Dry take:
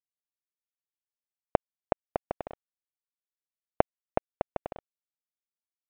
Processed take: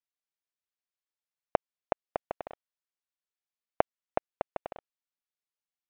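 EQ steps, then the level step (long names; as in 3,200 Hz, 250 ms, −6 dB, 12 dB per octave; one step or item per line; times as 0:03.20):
high-frequency loss of the air 76 metres
low-shelf EQ 400 Hz −11 dB
+1.5 dB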